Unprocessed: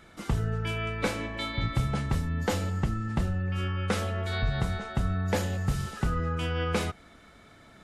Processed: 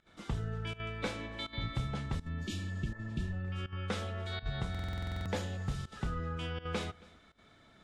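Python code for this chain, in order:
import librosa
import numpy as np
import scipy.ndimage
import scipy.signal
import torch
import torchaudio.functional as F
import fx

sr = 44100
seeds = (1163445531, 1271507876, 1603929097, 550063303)

p1 = scipy.signal.sosfilt(scipy.signal.butter(2, 8100.0, 'lowpass', fs=sr, output='sos'), x)
p2 = fx.peak_eq(p1, sr, hz=3500.0, db=5.5, octaves=0.33)
p3 = p2 + fx.echo_single(p2, sr, ms=273, db=-23.5, dry=0)
p4 = fx.volume_shaper(p3, sr, bpm=82, per_beat=1, depth_db=-17, release_ms=64.0, shape='slow start')
p5 = fx.spec_repair(p4, sr, seeds[0], start_s=2.48, length_s=0.82, low_hz=390.0, high_hz=2200.0, source='before')
p6 = fx.buffer_glitch(p5, sr, at_s=(4.7,), block=2048, repeats=11)
y = p6 * librosa.db_to_amplitude(-8.0)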